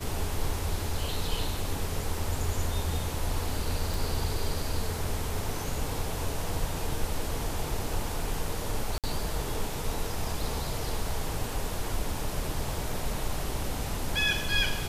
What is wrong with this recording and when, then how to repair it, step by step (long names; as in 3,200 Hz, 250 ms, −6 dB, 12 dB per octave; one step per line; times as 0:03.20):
0:03.94: click
0:08.98–0:09.04: drop-out 57 ms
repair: click removal
repair the gap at 0:08.98, 57 ms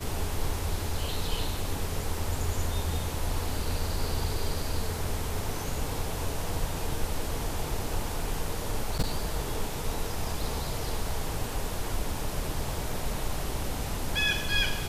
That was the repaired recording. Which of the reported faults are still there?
none of them is left